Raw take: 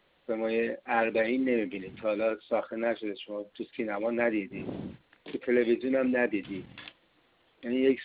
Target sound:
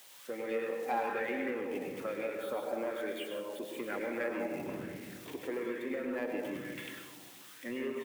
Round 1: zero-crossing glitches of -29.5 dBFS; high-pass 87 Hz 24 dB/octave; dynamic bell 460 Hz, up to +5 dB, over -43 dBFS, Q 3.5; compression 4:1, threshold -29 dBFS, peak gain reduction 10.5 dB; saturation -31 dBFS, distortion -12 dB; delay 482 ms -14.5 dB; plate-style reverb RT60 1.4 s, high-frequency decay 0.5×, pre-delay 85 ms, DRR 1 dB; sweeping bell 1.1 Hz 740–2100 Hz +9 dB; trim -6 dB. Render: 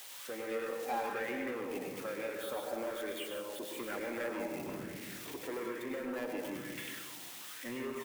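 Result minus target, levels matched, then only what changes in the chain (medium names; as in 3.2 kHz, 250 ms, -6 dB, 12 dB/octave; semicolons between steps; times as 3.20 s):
zero-crossing glitches: distortion +9 dB; saturation: distortion +8 dB
change: zero-crossing glitches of -38.5 dBFS; change: saturation -24 dBFS, distortion -20 dB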